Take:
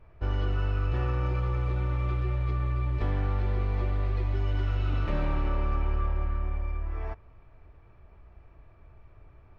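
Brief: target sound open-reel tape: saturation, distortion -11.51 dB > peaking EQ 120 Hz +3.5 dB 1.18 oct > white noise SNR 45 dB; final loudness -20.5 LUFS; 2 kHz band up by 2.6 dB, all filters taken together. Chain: peaking EQ 2 kHz +3.5 dB; saturation -28.5 dBFS; peaking EQ 120 Hz +3.5 dB 1.18 oct; white noise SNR 45 dB; trim +13.5 dB

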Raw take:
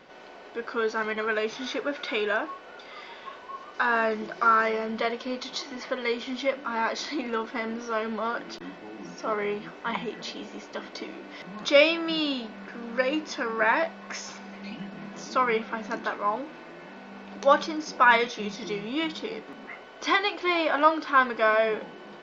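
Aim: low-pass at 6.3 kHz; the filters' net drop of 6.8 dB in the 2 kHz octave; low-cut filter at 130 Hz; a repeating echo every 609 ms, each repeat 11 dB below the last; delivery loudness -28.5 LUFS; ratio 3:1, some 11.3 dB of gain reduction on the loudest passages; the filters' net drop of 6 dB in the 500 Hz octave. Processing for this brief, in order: high-pass 130 Hz; low-pass 6.3 kHz; peaking EQ 500 Hz -7 dB; peaking EQ 2 kHz -9 dB; compression 3:1, threshold -34 dBFS; feedback delay 609 ms, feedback 28%, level -11 dB; trim +9.5 dB

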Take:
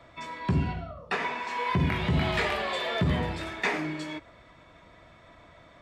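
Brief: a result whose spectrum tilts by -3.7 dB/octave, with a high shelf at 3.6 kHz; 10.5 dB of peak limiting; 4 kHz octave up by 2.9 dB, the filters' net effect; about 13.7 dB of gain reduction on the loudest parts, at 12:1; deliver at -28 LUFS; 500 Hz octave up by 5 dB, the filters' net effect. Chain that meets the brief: peaking EQ 500 Hz +6.5 dB; treble shelf 3.6 kHz -4 dB; peaking EQ 4 kHz +6 dB; compression 12:1, threshold -34 dBFS; trim +13 dB; peak limiter -19 dBFS

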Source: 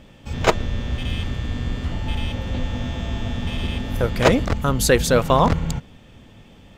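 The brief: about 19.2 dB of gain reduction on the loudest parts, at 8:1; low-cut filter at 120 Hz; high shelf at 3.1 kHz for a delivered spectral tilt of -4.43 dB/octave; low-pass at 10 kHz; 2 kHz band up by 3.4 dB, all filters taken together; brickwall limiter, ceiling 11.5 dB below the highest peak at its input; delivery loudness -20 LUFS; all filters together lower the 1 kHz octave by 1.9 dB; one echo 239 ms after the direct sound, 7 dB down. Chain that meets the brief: high-pass 120 Hz; low-pass 10 kHz; peaking EQ 1 kHz -3.5 dB; peaking EQ 2 kHz +7.5 dB; treble shelf 3.1 kHz -6.5 dB; compression 8:1, threshold -31 dBFS; peak limiter -29 dBFS; delay 239 ms -7 dB; trim +18.5 dB

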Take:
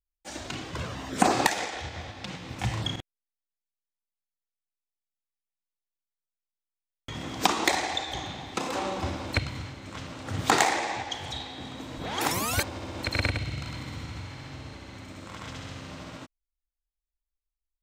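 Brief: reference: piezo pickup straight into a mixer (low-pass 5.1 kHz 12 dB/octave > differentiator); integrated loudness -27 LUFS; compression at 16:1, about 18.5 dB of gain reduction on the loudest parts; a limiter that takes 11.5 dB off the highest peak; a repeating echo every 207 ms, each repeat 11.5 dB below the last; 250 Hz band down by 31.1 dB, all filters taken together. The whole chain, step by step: peaking EQ 250 Hz -4 dB; compression 16:1, threshold -36 dBFS; peak limiter -31.5 dBFS; low-pass 5.1 kHz 12 dB/octave; differentiator; feedback delay 207 ms, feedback 27%, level -11.5 dB; trim +26 dB

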